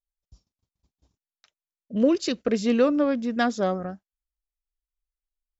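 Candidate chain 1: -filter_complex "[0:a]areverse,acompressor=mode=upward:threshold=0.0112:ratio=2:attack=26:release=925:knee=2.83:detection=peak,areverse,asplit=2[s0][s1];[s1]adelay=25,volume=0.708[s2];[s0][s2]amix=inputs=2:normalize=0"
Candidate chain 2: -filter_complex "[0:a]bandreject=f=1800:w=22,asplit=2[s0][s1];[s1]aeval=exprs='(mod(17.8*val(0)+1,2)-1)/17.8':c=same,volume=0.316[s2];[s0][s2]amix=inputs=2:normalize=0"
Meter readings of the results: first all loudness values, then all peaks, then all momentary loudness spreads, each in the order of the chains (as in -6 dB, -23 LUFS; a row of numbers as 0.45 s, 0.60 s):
-22.0 LUFS, -24.0 LUFS; -7.0 dBFS, -9.5 dBFS; 10 LU, 11 LU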